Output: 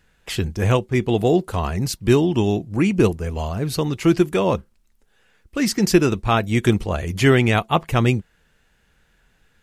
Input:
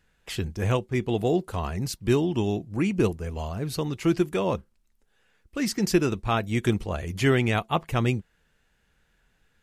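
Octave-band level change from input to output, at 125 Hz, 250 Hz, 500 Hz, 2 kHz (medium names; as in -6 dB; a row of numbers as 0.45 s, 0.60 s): +6.5 dB, +6.5 dB, +6.5 dB, +6.5 dB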